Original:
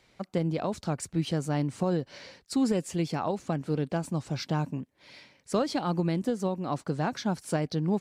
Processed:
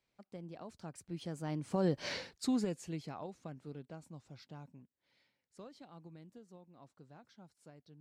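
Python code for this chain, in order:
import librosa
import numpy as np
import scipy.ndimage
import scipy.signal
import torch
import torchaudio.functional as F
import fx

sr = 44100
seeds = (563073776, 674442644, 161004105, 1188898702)

y = fx.doppler_pass(x, sr, speed_mps=15, closest_m=1.2, pass_at_s=2.11)
y = F.gain(torch.from_numpy(y), 7.5).numpy()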